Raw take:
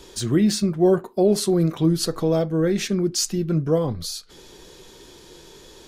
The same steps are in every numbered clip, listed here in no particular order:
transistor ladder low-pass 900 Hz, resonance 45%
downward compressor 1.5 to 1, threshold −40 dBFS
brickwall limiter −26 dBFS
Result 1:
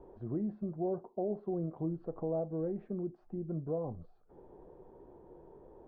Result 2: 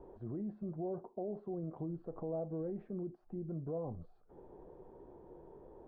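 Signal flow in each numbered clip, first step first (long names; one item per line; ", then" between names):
downward compressor, then transistor ladder low-pass, then brickwall limiter
downward compressor, then brickwall limiter, then transistor ladder low-pass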